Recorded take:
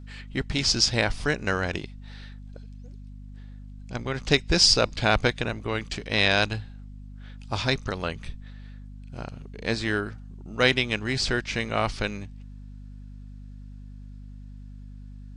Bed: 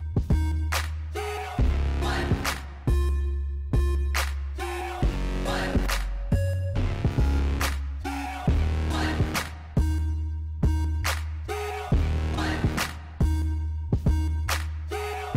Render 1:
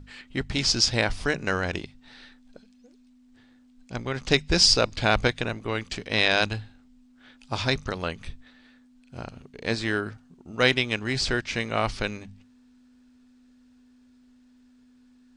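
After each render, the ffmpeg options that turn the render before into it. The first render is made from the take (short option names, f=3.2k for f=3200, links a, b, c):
-af "bandreject=f=50:t=h:w=6,bandreject=f=100:t=h:w=6,bandreject=f=150:t=h:w=6,bandreject=f=200:t=h:w=6"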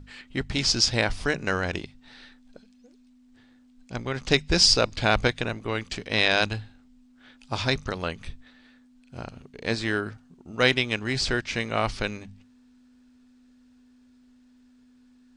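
-af anull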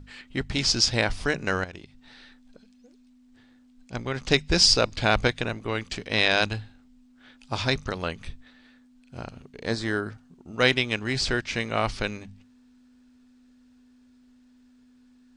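-filter_complex "[0:a]asettb=1/sr,asplit=3[a][b][c];[a]atrim=end=1.644[d];[b]atrim=start=1.64:end=3.93,asetpts=PTS-STARTPTS,afade=t=in:d=0.004:c=qsin,afade=t=out:st=2.286:d=0.004:c=qsin,acompressor=threshold=-46dB:ratio=2:attack=3.2:release=140:knee=1:detection=peak[e];[c]atrim=start=3.926[f];[d][e]acrossfade=d=0.004:c1=hsin:c2=qsin[g];[g][f]acrossfade=d=0.004:c1=qsin:c2=hsin,asettb=1/sr,asplit=3[h][i][j];[h]atrim=end=9.664[k];[i]atrim=start=9.66:end=10.1,asetpts=PTS-STARTPTS,afade=t=in:d=0.004:c=qsin,afade=t=out:st=0.436:d=0.004:c=qsin,equalizer=f=2.6k:w=2.9:g=-11[l];[j]atrim=start=10.096[m];[k][l]acrossfade=d=0.004:c1=hsin:c2=qsin[n];[n][m]acrossfade=d=0.004:c1=qsin:c2=hsin"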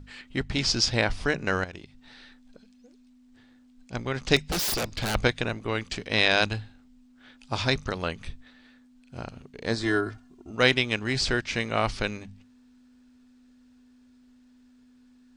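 -filter_complex "[0:a]asettb=1/sr,asplit=3[a][b][c];[a]atrim=end=0.424[d];[b]atrim=start=0.42:end=1.53,asetpts=PTS-STARTPTS,afade=t=in:d=0.004:c=qsin,afade=t=out:st=1.106:d=0.004:c=qsin,highshelf=f=6.8k:g=-7[e];[c]atrim=start=1.526[f];[d][e]acrossfade=d=0.004:c1=hsin:c2=qsin[g];[g][f]acrossfade=d=0.004:c1=qsin:c2=hsin,asettb=1/sr,asplit=3[h][i][j];[h]atrim=end=4.364[k];[i]atrim=start=4.36:end=5.15,asetpts=PTS-STARTPTS,afade=t=in:d=0.004:c=qsin,afade=t=out:st=0.786:d=0.004:c=qsin,aeval=exprs='0.075*(abs(mod(val(0)/0.075+3,4)-2)-1)':c=same[l];[j]atrim=start=5.146[m];[k][l]acrossfade=d=0.004:c1=hsin:c2=qsin[n];[n][m]acrossfade=d=0.004:c1=qsin:c2=hsin,asettb=1/sr,asplit=3[o][p][q];[o]atrim=end=9.834[r];[p]atrim=start=9.83:end=10.51,asetpts=PTS-STARTPTS,afade=t=in:d=0.004:c=qsin,afade=t=out:st=0.676:d=0.004:c=qsin,aecho=1:1:2.9:0.76,atrim=end_sample=29988[s];[q]atrim=start=10.506[t];[r][s]acrossfade=d=0.004:c1=hsin:c2=qsin[u];[u][t]acrossfade=d=0.004:c1=qsin:c2=hsin"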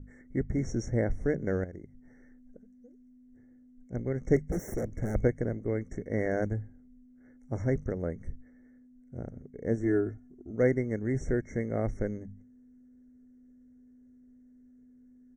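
-af "afftfilt=real='re*(1-between(b*sr/4096,2200,5500))':imag='im*(1-between(b*sr/4096,2200,5500))':win_size=4096:overlap=0.75,firequalizer=gain_entry='entry(500,0);entry(1000,-22);entry(1700,-13);entry(12000,-20)':delay=0.05:min_phase=1"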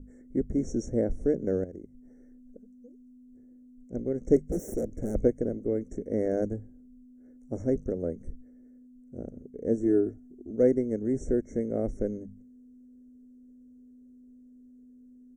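-af "equalizer=f=125:t=o:w=1:g=-8,equalizer=f=250:t=o:w=1:g=5,equalizer=f=500:t=o:w=1:g=5,equalizer=f=1k:t=o:w=1:g=-9,equalizer=f=2k:t=o:w=1:g=-11,equalizer=f=4k:t=o:w=1:g=-9,equalizer=f=8k:t=o:w=1:g=6"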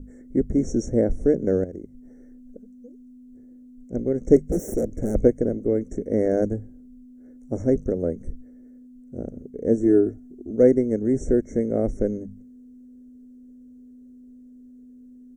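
-af "volume=6.5dB"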